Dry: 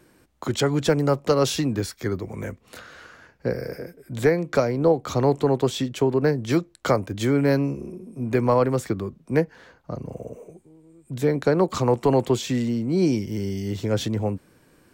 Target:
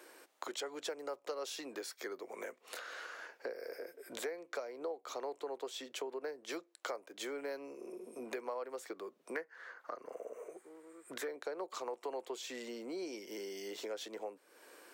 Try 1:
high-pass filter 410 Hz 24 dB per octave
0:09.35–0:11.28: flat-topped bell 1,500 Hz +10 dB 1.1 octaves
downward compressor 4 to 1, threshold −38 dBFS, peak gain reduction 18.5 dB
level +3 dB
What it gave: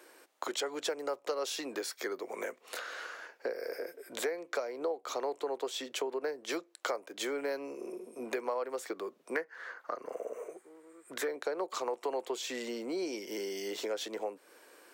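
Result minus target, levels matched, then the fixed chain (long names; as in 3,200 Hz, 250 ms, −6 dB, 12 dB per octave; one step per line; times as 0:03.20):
downward compressor: peak gain reduction −6.5 dB
high-pass filter 410 Hz 24 dB per octave
0:09.35–0:11.28: flat-topped bell 1,500 Hz +10 dB 1.1 octaves
downward compressor 4 to 1, threshold −46.5 dBFS, peak gain reduction 25 dB
level +3 dB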